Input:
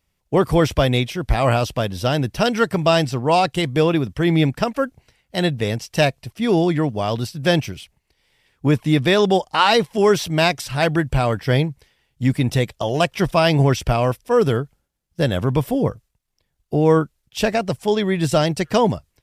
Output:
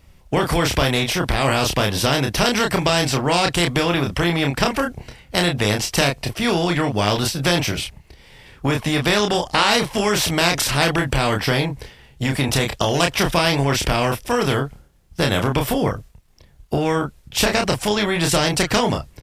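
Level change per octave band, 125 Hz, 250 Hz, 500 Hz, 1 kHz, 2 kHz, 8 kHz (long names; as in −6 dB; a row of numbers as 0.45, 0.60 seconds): −2.0, −1.5, −2.5, 0.0, +4.0, +9.5 decibels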